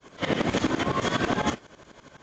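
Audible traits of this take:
tremolo saw up 12 Hz, depth 100%
AAC

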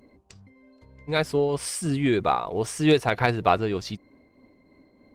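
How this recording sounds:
tremolo triangle 3.2 Hz, depth 40%
Opus

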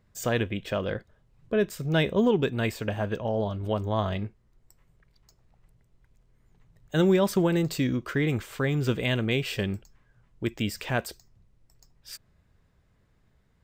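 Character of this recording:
background noise floor −66 dBFS
spectral slope −5.5 dB per octave

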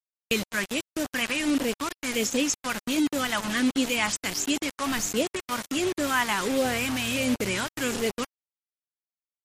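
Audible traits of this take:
phaser sweep stages 2, 1.4 Hz, lowest notch 440–1,200 Hz
a quantiser's noise floor 6 bits, dither none
MP3

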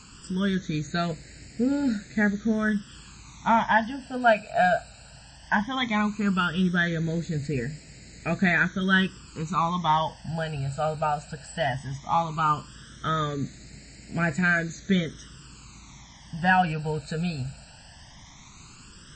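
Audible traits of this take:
a quantiser's noise floor 8 bits, dither triangular
phaser sweep stages 12, 0.16 Hz, lowest notch 340–1,100 Hz
MP3

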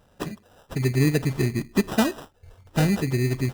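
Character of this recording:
aliases and images of a low sample rate 2,200 Hz, jitter 0%

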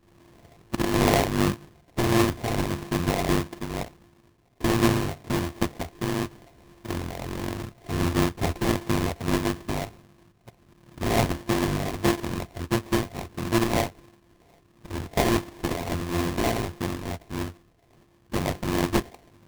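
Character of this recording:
a buzz of ramps at a fixed pitch in blocks of 128 samples
phaser sweep stages 4, 1.5 Hz, lowest notch 360–1,100 Hz
aliases and images of a low sample rate 1,400 Hz, jitter 20%
amplitude modulation by smooth noise

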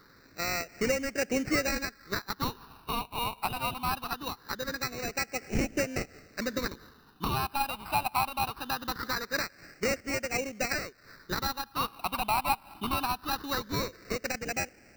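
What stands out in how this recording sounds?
aliases and images of a low sample rate 3,300 Hz, jitter 0%
phaser sweep stages 6, 0.22 Hz, lowest notch 480–1,000 Hz

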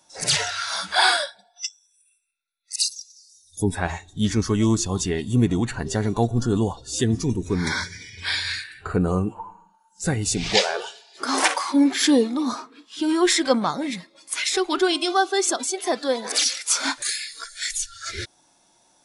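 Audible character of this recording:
background noise floor −62 dBFS
spectral slope −3.5 dB per octave

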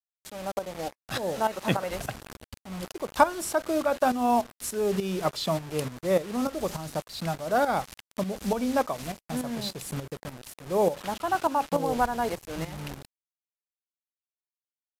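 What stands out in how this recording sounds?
a quantiser's noise floor 6 bits, dither none
tremolo saw up 3.4 Hz, depth 70%
Ogg Vorbis

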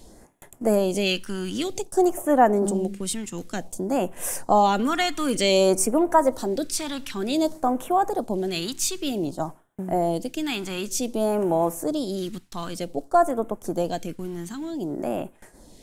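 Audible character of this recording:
phaser sweep stages 2, 0.54 Hz, lowest notch 570–4,300 Hz

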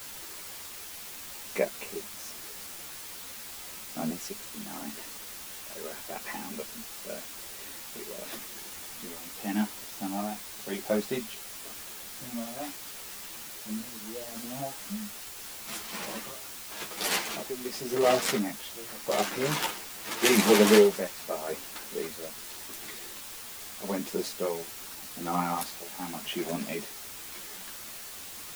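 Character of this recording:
tremolo triangle 0.84 Hz, depth 90%
a quantiser's noise floor 8 bits, dither triangular
a shimmering, thickened sound

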